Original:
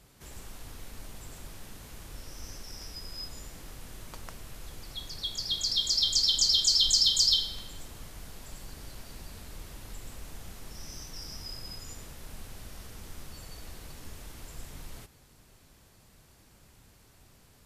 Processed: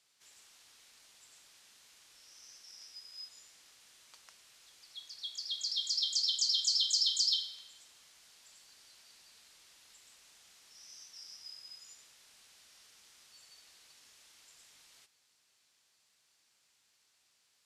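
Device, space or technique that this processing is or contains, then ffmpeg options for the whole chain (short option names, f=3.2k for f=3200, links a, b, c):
piezo pickup straight into a mixer: -af "lowpass=5.1k,aderivative"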